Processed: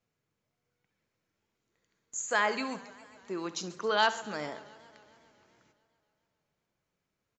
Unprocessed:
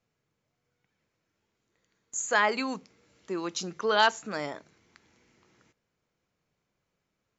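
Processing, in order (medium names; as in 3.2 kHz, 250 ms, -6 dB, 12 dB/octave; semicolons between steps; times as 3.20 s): feedback delay 66 ms, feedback 44%, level -15 dB; modulated delay 137 ms, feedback 73%, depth 146 cents, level -20.5 dB; trim -3.5 dB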